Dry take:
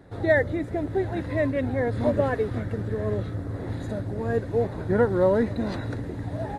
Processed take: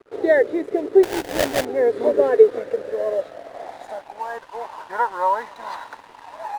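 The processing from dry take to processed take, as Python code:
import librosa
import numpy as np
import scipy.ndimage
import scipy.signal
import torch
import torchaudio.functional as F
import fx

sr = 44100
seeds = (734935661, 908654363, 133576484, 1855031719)

y = fx.filter_sweep_highpass(x, sr, from_hz=410.0, to_hz=950.0, start_s=2.22, end_s=4.46, q=6.5)
y = fx.sample_hold(y, sr, seeds[0], rate_hz=1200.0, jitter_pct=20, at=(1.03, 1.65))
y = np.sign(y) * np.maximum(np.abs(y) - 10.0 ** (-45.0 / 20.0), 0.0)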